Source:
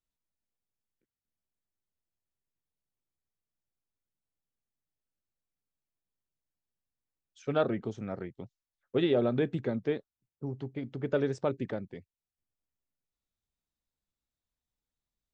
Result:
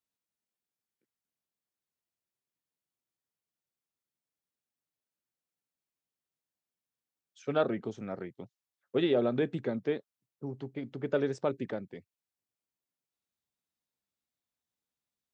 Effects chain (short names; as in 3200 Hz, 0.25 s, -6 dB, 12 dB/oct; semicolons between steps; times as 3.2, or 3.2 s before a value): Bessel high-pass 160 Hz